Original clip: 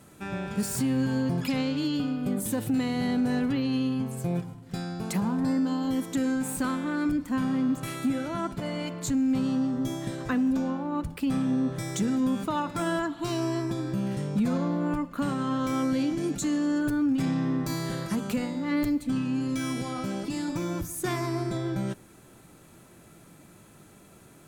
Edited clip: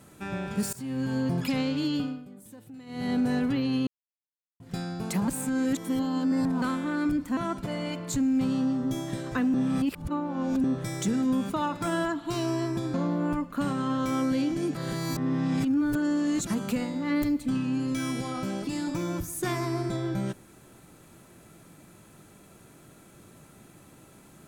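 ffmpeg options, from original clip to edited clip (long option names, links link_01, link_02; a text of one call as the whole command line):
ffmpeg -i in.wav -filter_complex "[0:a]asplit=14[link_01][link_02][link_03][link_04][link_05][link_06][link_07][link_08][link_09][link_10][link_11][link_12][link_13][link_14];[link_01]atrim=end=0.73,asetpts=PTS-STARTPTS,afade=type=out:start_time=0.726:duration=0.004:curve=hsin:silence=0.105925[link_15];[link_02]atrim=start=0.73:end=2.26,asetpts=PTS-STARTPTS,afade=type=in:duration=0.68:curve=qsin:silence=0.105925,afade=type=out:start_time=1.25:duration=0.28:silence=0.112202[link_16];[link_03]atrim=start=2.26:end=2.86,asetpts=PTS-STARTPTS,volume=-19dB[link_17];[link_04]atrim=start=2.86:end=3.87,asetpts=PTS-STARTPTS,afade=type=in:duration=0.28:silence=0.112202,afade=type=out:start_time=1.006:duration=0.004:curve=hsin[link_18];[link_05]atrim=start=3.87:end=4.6,asetpts=PTS-STARTPTS,volume=0[link_19];[link_06]atrim=start=4.6:end=5.282,asetpts=PTS-STARTPTS,afade=type=in:duration=0.004:curve=hsin[link_20];[link_07]atrim=start=5.278:end=6.622,asetpts=PTS-STARTPTS,areverse[link_21];[link_08]atrim=start=6.618:end=7.372[link_22];[link_09]atrim=start=8.308:end=10.482[link_23];[link_10]atrim=start=10.478:end=11.582,asetpts=PTS-STARTPTS,areverse[link_24];[link_11]atrim=start=11.578:end=13.882[link_25];[link_12]atrim=start=14.548:end=16.362[link_26];[link_13]atrim=start=16.358:end=18.082,asetpts=PTS-STARTPTS,areverse[link_27];[link_14]atrim=start=18.078[link_28];[link_15][link_16][link_17][link_18][link_19][link_20]concat=n=6:v=0:a=1[link_29];[link_29][link_21]acrossfade=duration=0.004:curve1=hsin:curve2=hsin[link_30];[link_30][link_22]acrossfade=duration=0.004:curve1=hsin:curve2=hsin[link_31];[link_31][link_23]acrossfade=duration=0.004:curve1=hsin:curve2=hsin[link_32];[link_32][link_24]acrossfade=duration=0.004:curve1=hsin:curve2=hsin[link_33];[link_33][link_25]acrossfade=duration=0.004:curve1=hsin:curve2=hsin[link_34];[link_34][link_26]acrossfade=duration=0.004:curve1=hsin:curve2=hsin[link_35];[link_35][link_27]acrossfade=duration=0.004:curve1=hsin:curve2=hsin[link_36];[link_36][link_28]acrossfade=duration=0.004:curve1=hsin:curve2=hsin" out.wav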